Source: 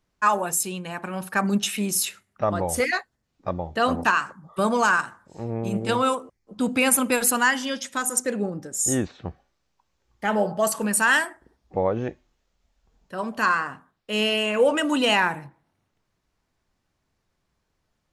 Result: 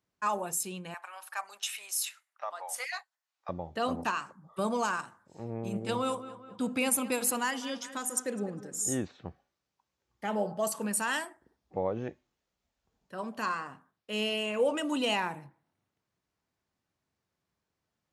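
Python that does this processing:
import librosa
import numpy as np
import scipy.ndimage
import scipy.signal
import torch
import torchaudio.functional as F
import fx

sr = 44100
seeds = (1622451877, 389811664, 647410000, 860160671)

y = fx.highpass(x, sr, hz=790.0, slope=24, at=(0.94, 3.49))
y = fx.echo_filtered(y, sr, ms=204, feedback_pct=49, hz=3400.0, wet_db=-15.0, at=(5.9, 8.87), fade=0.02)
y = scipy.signal.sosfilt(scipy.signal.butter(2, 85.0, 'highpass', fs=sr, output='sos'), y)
y = fx.dynamic_eq(y, sr, hz=1600.0, q=2.0, threshold_db=-36.0, ratio=4.0, max_db=-7)
y = y * 10.0 ** (-8.0 / 20.0)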